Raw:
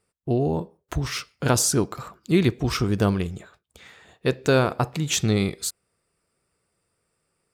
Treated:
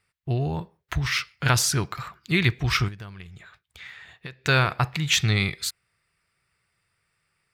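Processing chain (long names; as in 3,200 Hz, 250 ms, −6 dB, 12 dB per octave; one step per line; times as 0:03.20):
octave-band graphic EQ 125/250/500/2,000/4,000/8,000 Hz +4/−9/−8/+9/+4/−5 dB
0:02.88–0:04.46: downward compressor 8 to 1, threshold −37 dBFS, peak gain reduction 19 dB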